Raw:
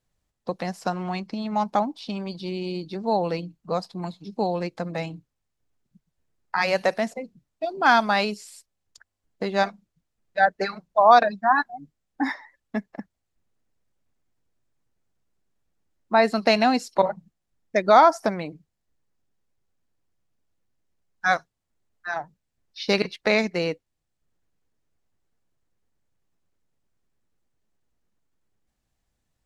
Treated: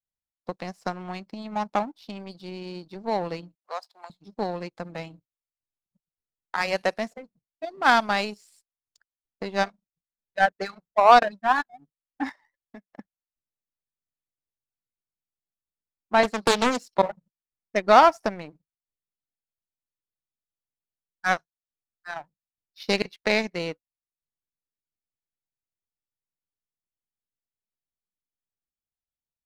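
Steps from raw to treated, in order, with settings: 12.29–12.91 compressor 2.5:1, threshold -38 dBFS, peak gain reduction 10.5 dB; power-law curve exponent 1.4; 3.55–4.1 HPF 630 Hz 24 dB/oct; 16.23–16.8 Doppler distortion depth 0.73 ms; gain +2 dB

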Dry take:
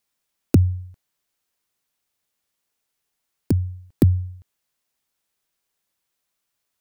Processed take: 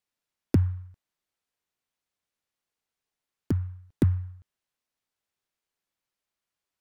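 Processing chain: high shelf 6400 Hz -6 dB; noise-modulated delay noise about 1200 Hz, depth 0.037 ms; gain -6.5 dB

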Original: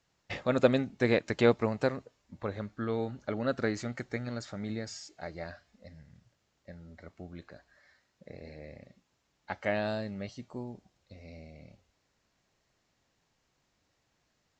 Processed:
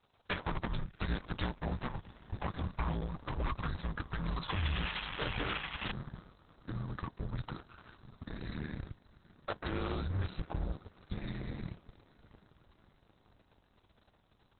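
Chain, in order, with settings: notches 50/100/150 Hz; frequency shift -290 Hz; compressor 4:1, threshold -46 dBFS, peak gain reduction 24 dB; graphic EQ 250/1000/2000 Hz -11/+5/-9 dB; on a send: diffused feedback echo 0.755 s, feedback 66%, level -15 dB; on the sum: painted sound noise, 4.49–5.92, 720–3500 Hz -57 dBFS; sine folder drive 13 dB, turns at -29.5 dBFS; added harmonics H 3 -22 dB, 4 -27 dB, 7 -24 dB, 8 -29 dB, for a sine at -28 dBFS; gain +2.5 dB; Opus 6 kbps 48000 Hz

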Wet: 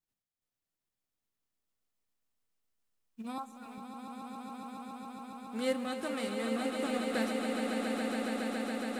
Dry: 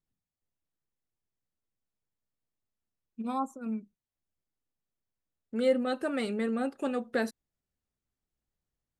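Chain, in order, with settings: spectral whitening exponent 0.6; 3.38–3.78 HPF 650 Hz 12 dB/oct; swelling echo 0.139 s, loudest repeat 8, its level -7 dB; gain -6.5 dB

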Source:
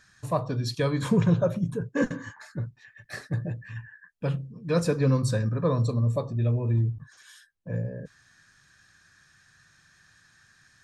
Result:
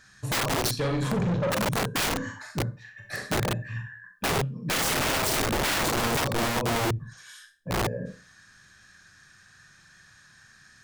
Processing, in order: Schroeder reverb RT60 0.34 s, combs from 30 ms, DRR 3 dB; 0.71–1.52 tube stage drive 26 dB, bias 0.4; wrapped overs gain 24 dB; gain +3 dB

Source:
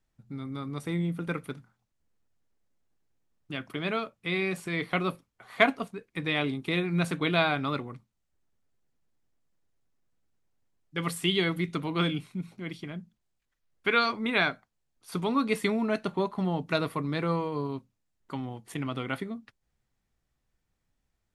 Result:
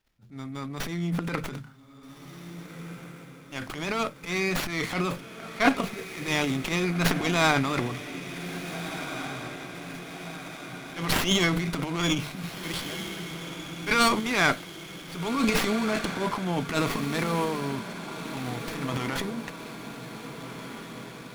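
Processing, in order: transient shaper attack -10 dB, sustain +12 dB; high shelf 2300 Hz +10 dB; notches 50/100/150 Hz; on a send: diffused feedback echo 1.663 s, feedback 60%, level -10 dB; on the sum: running maximum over 5 samples

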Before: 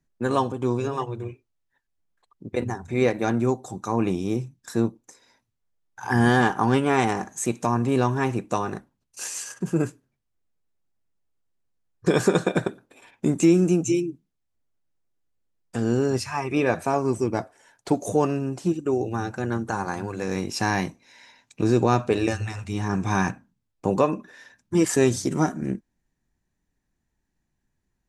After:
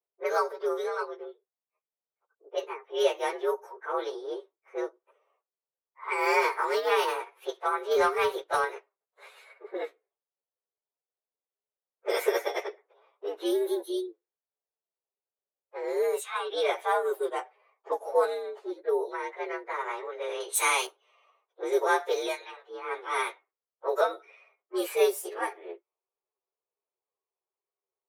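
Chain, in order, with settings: inharmonic rescaling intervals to 116%; steep high-pass 390 Hz 72 dB/oct; 7.91–8.65 sample leveller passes 1; 20.4–20.87 high shelf 2000 Hz +10 dB; low-pass opened by the level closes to 930 Hz, open at -25 dBFS

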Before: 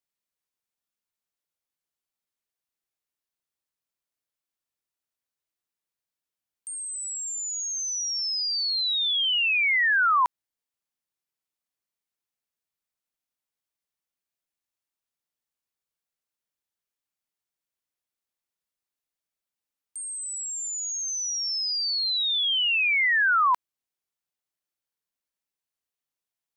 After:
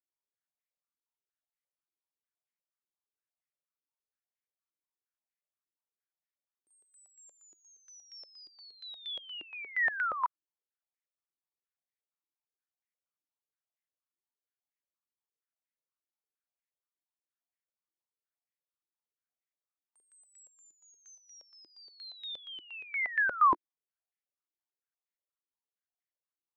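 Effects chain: 21.15–21.7 air absorption 69 m; stepped band-pass 8.5 Hz 330–2000 Hz

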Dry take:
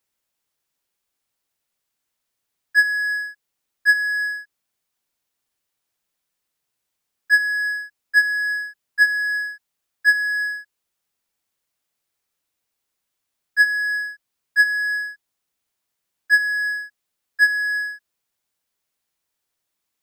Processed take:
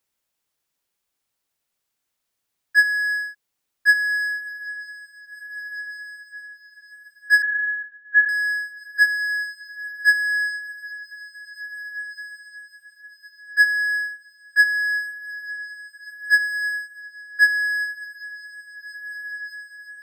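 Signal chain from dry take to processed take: diffused feedback echo 1.826 s, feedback 45%, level -13 dB; 7.42–8.29 LPC vocoder at 8 kHz pitch kept

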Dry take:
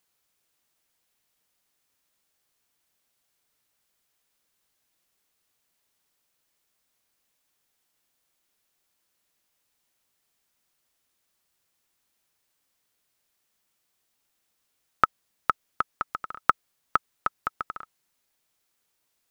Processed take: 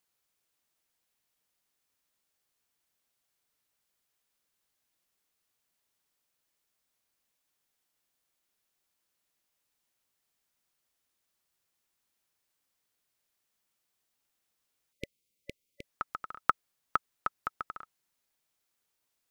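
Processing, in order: spectral delete 14.92–15.84, 580–2000 Hz; gain -5.5 dB

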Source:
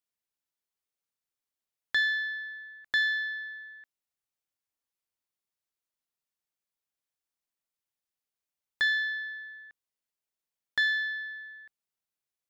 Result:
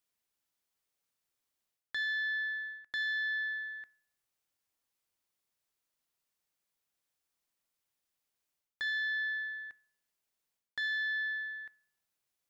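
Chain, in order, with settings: de-hum 216 Hz, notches 18; reverse; compressor 16:1, threshold -37 dBFS, peak gain reduction 15 dB; reverse; gain +5 dB

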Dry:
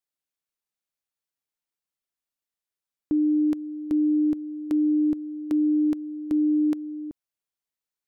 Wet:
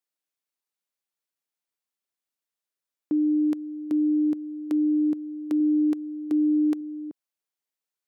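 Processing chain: HPF 200 Hz; 5.6–6.81 comb 2.6 ms, depth 31%

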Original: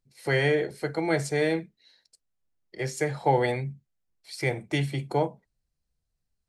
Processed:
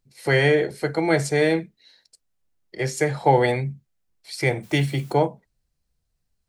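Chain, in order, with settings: 4.62–5.12 added noise white -59 dBFS; gain +5.5 dB

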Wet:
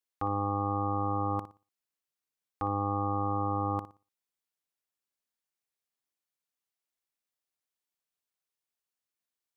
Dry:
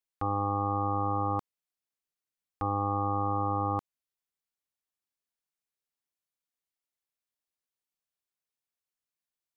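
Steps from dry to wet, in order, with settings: low shelf 90 Hz -7 dB; on a send: flutter echo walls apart 10.1 m, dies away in 0.3 s

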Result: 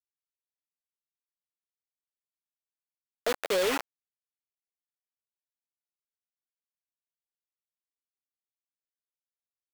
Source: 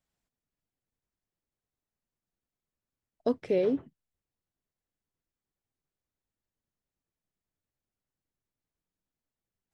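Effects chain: LPF 1800 Hz 24 dB/oct; in parallel at -1.5 dB: negative-ratio compressor -36 dBFS, ratio -1; on the sum: bit-crush 5-bit; HPF 620 Hz 12 dB/oct; sample leveller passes 3; gain -3 dB

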